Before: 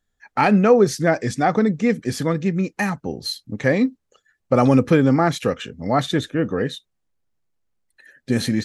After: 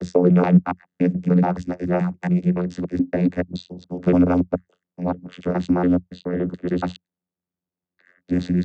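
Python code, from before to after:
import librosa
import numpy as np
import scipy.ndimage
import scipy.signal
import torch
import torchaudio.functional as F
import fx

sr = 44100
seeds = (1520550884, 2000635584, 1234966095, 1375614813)

y = fx.block_reorder(x, sr, ms=142.0, group=7)
y = fx.vocoder(y, sr, bands=16, carrier='saw', carrier_hz=89.1)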